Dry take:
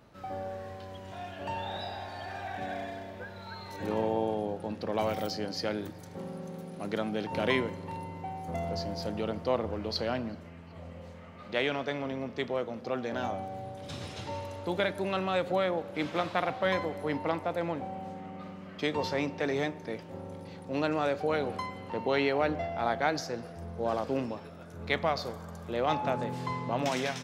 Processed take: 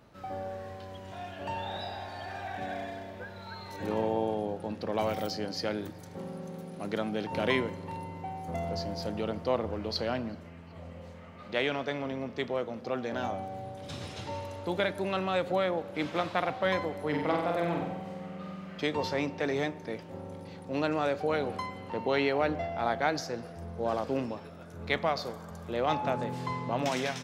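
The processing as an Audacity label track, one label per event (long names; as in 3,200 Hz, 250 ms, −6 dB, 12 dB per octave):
17.080000	18.830000	flutter between parallel walls apart 8 metres, dies away in 0.87 s
24.970000	25.510000	high-pass filter 110 Hz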